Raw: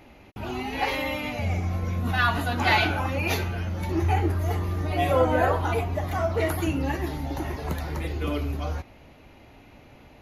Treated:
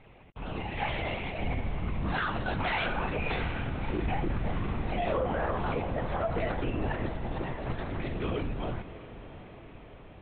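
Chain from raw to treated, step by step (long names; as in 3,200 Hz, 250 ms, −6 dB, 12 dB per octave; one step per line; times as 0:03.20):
linear-prediction vocoder at 8 kHz whisper
feedback delay with all-pass diffusion 681 ms, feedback 59%, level −14 dB
brickwall limiter −17 dBFS, peak gain reduction 8 dB
level −4 dB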